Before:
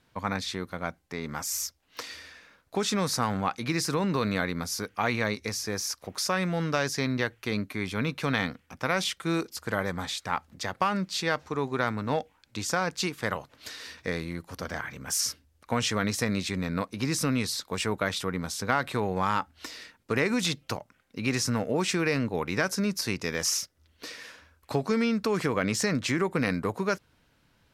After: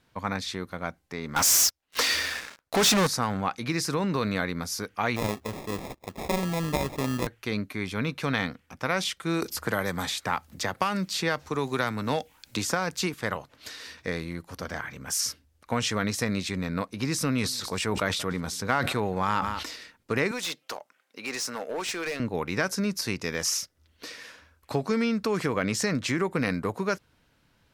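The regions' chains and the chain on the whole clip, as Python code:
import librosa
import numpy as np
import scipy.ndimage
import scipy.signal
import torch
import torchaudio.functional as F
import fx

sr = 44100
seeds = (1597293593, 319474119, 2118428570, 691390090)

y = fx.chain(x, sr, fx.leveller(passes=5),
    fx.low_shelf(hz=370.0, db=-5.5), at=(1.36, 3.07))
y = fx.chain(y, sr, fx.lowpass(hz=3200.0, slope=6),
    fx.sample_hold(seeds[0], rate_hz=1500.0, jitter_pct=0), at=(5.16, 7.27))
y = fx.chain(y, sr, fx.high_shelf(hz=9900.0, db=10.0),
    fx.band_squash(depth_pct=70), at=(9.42, 13.14))
y = fx.chain(y, sr, fx.echo_single(ms=180, db=-23.5),
    fx.sustainer(db_per_s=42.0), at=(17.2, 19.76))
y = fx.chain(y, sr, fx.highpass(hz=460.0, slope=12),
    fx.clip_hard(threshold_db=-27.0), at=(20.31, 22.2))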